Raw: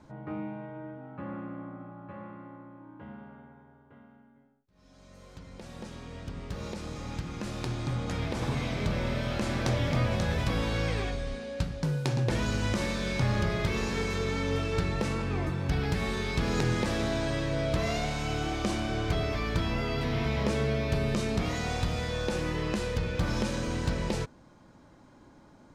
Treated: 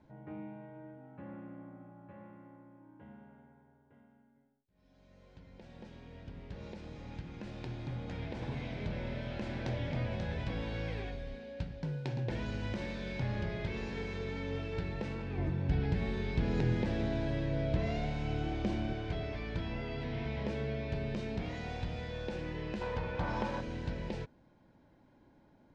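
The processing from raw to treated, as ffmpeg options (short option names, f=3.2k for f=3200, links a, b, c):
-filter_complex "[0:a]asettb=1/sr,asplit=3[a][b][c];[a]atrim=end=15.384[d];[b]atrim=start=15.38:end=18.93,asetpts=PTS-STARTPTS,afade=t=in:d=0.004:c=qsin,afade=t=out:st=3.546:d=0.004:c=qsin,lowshelf=f=450:g=6.5[e];[c]atrim=start=18.926[f];[d][e]acrossfade=d=0.004:c1=hsin:c2=qsin[g];[g][f]acrossfade=d=0.004:c1=qsin:c2=hsin,asettb=1/sr,asplit=3[h][i][j];[h]atrim=end=22.814[k];[i]atrim=start=22.81:end=23.61,asetpts=PTS-STARTPTS,afade=t=in:d=0.004:c=qsin,afade=t=out:st=0.796:d=0.004:c=qsin,equalizer=f=980:t=o:w=1.2:g=14.5[l];[j]atrim=start=23.606[m];[k][l]acrossfade=d=0.004:c1=hsin:c2=qsin[n];[n][m]acrossfade=d=0.004:c1=qsin:c2=hsin,lowpass=3.5k,equalizer=f=1.2k:w=5.2:g=-11.5,volume=-8dB"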